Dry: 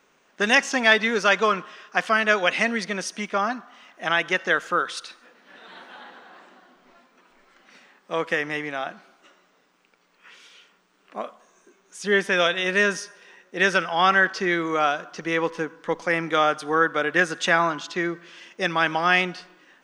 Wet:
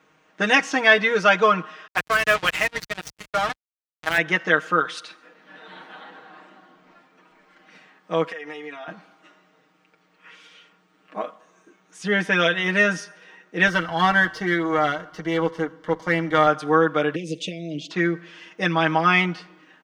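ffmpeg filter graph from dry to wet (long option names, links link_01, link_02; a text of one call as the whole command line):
ffmpeg -i in.wav -filter_complex "[0:a]asettb=1/sr,asplit=3[link_01][link_02][link_03];[link_01]atrim=end=1.874[link_04];[link_02]atrim=start=1.87:end=4.18,asetpts=PTS-STARTPTS,afade=type=in:duration=0.004:curve=qsin,afade=type=out:start_time=2.306:duration=0.004:curve=qsin,highpass=frequency=710:poles=1,aeval=exprs='val(0)+0.00398*(sin(2*PI*50*n/s)+sin(2*PI*2*50*n/s)/2+sin(2*PI*3*50*n/s)/3+sin(2*PI*4*50*n/s)/4+sin(2*PI*5*50*n/s)/5)':channel_layout=same,acrusher=bits=3:mix=0:aa=0.5[link_05];[link_03]atrim=start=4.176[link_06];[link_04][link_05]acrossfade=duration=0.004:curve1=hsin:curve2=qsin[link_07];[link_07][link_06]acrossfade=duration=0.004:curve1=qsin:curve2=hsin,asettb=1/sr,asplit=3[link_08][link_09][link_10];[link_08]atrim=end=8.284[link_11];[link_09]atrim=start=8.28:end=8.88,asetpts=PTS-STARTPTS,afade=type=in:duration=0.004:curve=qsin,afade=type=out:start_time=0.596:duration=0.004:curve=qsin,highpass=370,aecho=1:1:4.3:0.8,atrim=end_sample=26460,acompressor=threshold=-33dB:ratio=20:attack=3.2:release=140:knee=1:detection=peak[link_12];[link_10]atrim=start=8.876[link_13];[link_11][link_12]acrossfade=duration=0.004:curve1=hsin:curve2=qsin[link_14];[link_14][link_13]acrossfade=duration=0.004:curve1=qsin:curve2=hsin,asettb=1/sr,asplit=3[link_15][link_16][link_17];[link_15]atrim=end=13.674[link_18];[link_16]atrim=start=13.67:end=16.47,asetpts=PTS-STARTPTS,afade=type=in:duration=0.004:curve=qsin,afade=type=out:start_time=2.796:duration=0.004:curve=qsin,aeval=exprs='if(lt(val(0),0),0.447*val(0),val(0))':channel_layout=same,asuperstop=centerf=2500:order=8:qfactor=7.2[link_19];[link_17]atrim=start=16.466[link_20];[link_18][link_19]acrossfade=duration=0.004:curve1=hsin:curve2=qsin[link_21];[link_21][link_20]acrossfade=duration=0.004:curve1=qsin:curve2=hsin,asettb=1/sr,asplit=3[link_22][link_23][link_24];[link_22]atrim=end=17.154[link_25];[link_23]atrim=start=17.15:end=17.91,asetpts=PTS-STARTPTS,afade=type=in:duration=0.004:curve=qsin,afade=type=out:start_time=0.756:duration=0.004:curve=qsin,acompressor=threshold=-24dB:ratio=6:attack=3.2:release=140:knee=1:detection=peak,asuperstop=centerf=1200:order=12:qfactor=0.69[link_26];[link_24]atrim=start=17.906[link_27];[link_25][link_26]acrossfade=duration=0.004:curve1=hsin:curve2=qsin[link_28];[link_28][link_27]acrossfade=duration=0.004:curve1=qsin:curve2=hsin,highpass=46,bass=frequency=250:gain=5,treble=frequency=4000:gain=-7,aecho=1:1:6.4:0.8" out.wav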